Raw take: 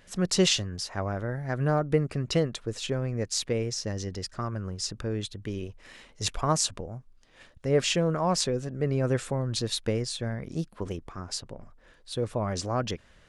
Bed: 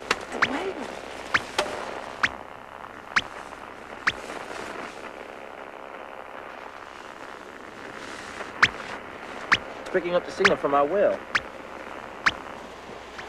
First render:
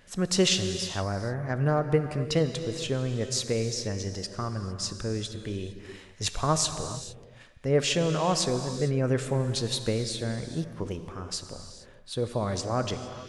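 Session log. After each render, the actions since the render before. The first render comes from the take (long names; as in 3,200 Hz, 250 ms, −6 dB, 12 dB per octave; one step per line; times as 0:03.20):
reverb whose tail is shaped and stops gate 480 ms flat, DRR 8 dB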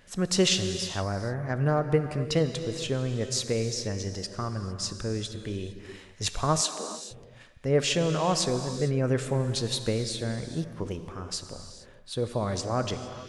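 0:06.61–0:07.11: Butterworth high-pass 190 Hz 72 dB per octave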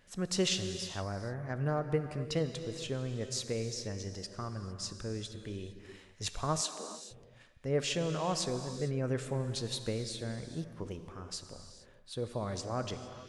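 level −7.5 dB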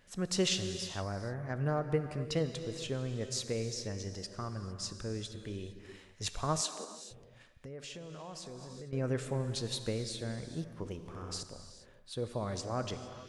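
0:06.84–0:08.93: downward compressor, threshold −43 dBFS
0:10.99–0:11.43: flutter between parallel walls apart 11.2 metres, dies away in 0.99 s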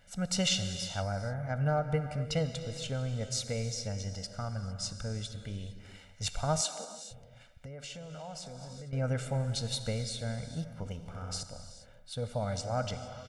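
comb filter 1.4 ms, depth 88%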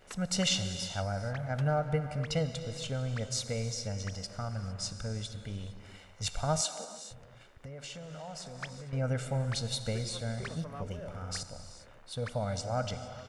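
mix in bed −24 dB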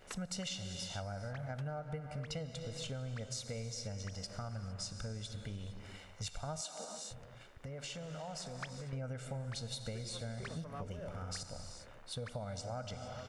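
downward compressor, threshold −39 dBFS, peak gain reduction 13.5 dB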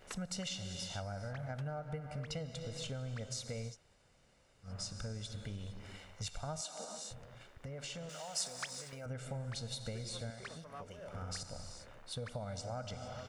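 0:03.72–0:04.67: fill with room tone, crossfade 0.10 s
0:08.09–0:09.06: RIAA equalisation recording
0:10.30–0:11.13: low-shelf EQ 320 Hz −11.5 dB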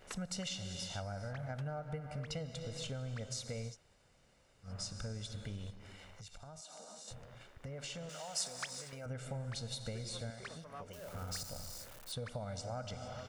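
0:05.70–0:07.08: downward compressor 5 to 1, threshold −49 dBFS
0:10.93–0:12.12: spike at every zero crossing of −43.5 dBFS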